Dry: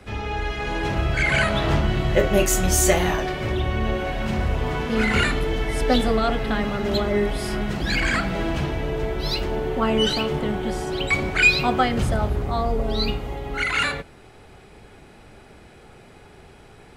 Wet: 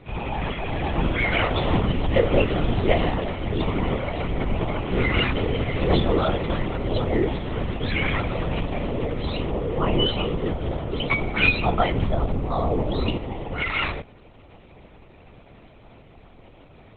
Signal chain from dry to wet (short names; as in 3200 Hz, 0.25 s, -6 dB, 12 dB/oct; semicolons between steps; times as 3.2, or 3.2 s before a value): LPC vocoder at 8 kHz whisper; bell 1600 Hz -10.5 dB 0.26 oct; Opus 24 kbps 48000 Hz